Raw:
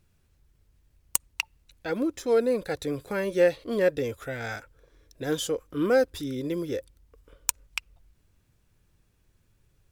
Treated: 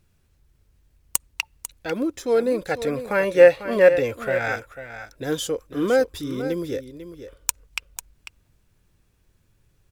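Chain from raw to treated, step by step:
gain on a spectral selection 0:02.71–0:04.56, 490–2,900 Hz +7 dB
single-tap delay 496 ms −11.5 dB
level +2.5 dB

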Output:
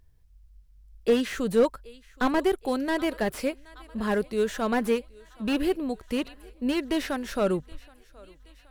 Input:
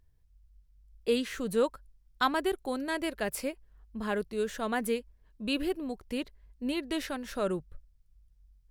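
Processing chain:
feedback echo with a high-pass in the loop 773 ms, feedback 62%, high-pass 340 Hz, level −24 dB
slew-rate limiting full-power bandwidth 43 Hz
level +6 dB

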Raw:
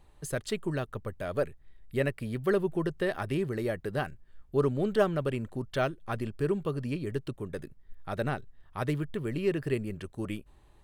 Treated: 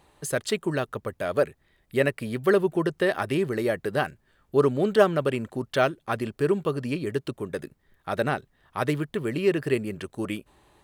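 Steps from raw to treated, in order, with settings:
high-pass filter 240 Hz 6 dB per octave
level +7.5 dB

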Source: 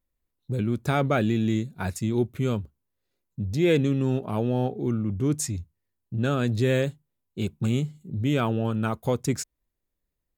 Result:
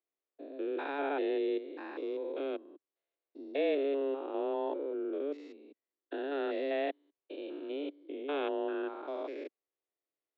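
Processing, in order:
spectrum averaged block by block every 200 ms
single-sideband voice off tune +140 Hz 170–3,600 Hz
level −6 dB

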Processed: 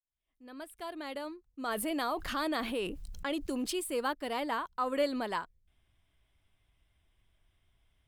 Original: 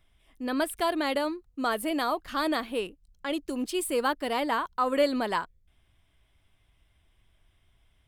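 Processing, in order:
fade in at the beginning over 2.26 s
0:01.68–0:03.79: envelope flattener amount 70%
level −6 dB

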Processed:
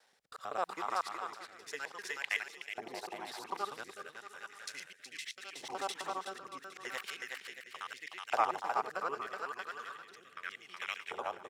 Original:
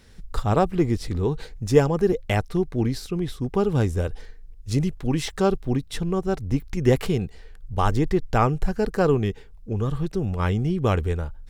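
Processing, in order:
reversed piece by piece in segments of 64 ms
pitch vibrato 2.7 Hz 6.3 cents
on a send: bouncing-ball delay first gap 370 ms, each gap 0.7×, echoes 5
on the sum: rotating-speaker cabinet horn 0.8 Hz
auto-filter high-pass saw up 0.36 Hz 760–2,300 Hz
level −8 dB

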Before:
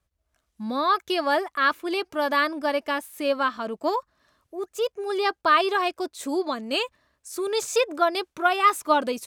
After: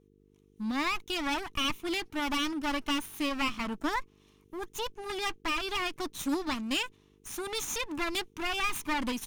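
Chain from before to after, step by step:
lower of the sound and its delayed copy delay 0.31 ms
brickwall limiter −19.5 dBFS, peak gain reduction 9 dB
speech leveller 0.5 s
flat-topped bell 520 Hz −11.5 dB 1.1 octaves
hum with harmonics 50 Hz, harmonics 9, −64 dBFS 0 dB per octave

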